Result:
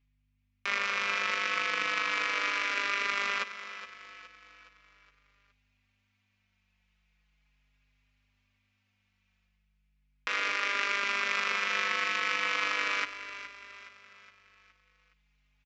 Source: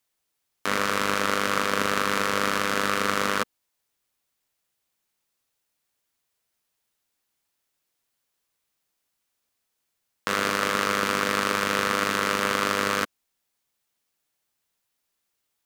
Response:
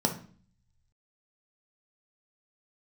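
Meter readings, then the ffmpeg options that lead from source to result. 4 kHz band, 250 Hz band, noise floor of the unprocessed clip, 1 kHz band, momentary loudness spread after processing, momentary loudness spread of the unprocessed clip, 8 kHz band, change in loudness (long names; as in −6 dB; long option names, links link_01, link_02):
−4.5 dB, −18.5 dB, −79 dBFS, −8.0 dB, 15 LU, 5 LU, −12.0 dB, −5.0 dB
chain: -filter_complex "[0:a]highpass=frequency=860:poles=1,equalizer=frequency=2400:width_type=o:width=0.65:gain=12.5,areverse,acompressor=mode=upward:threshold=-52dB:ratio=2.5,areverse,aeval=exprs='val(0)+0.000562*(sin(2*PI*50*n/s)+sin(2*PI*2*50*n/s)/2+sin(2*PI*3*50*n/s)/3+sin(2*PI*4*50*n/s)/4+sin(2*PI*5*50*n/s)/5)':channel_layout=same,adynamicsmooth=sensitivity=1:basefreq=3900,aecho=1:1:417|834|1251|1668|2085:0.237|0.111|0.0524|0.0246|0.0116,aresample=16000,aresample=44100,asplit=2[link_01][link_02];[link_02]adelay=4.4,afreqshift=-0.38[link_03];[link_01][link_03]amix=inputs=2:normalize=1,volume=-5dB"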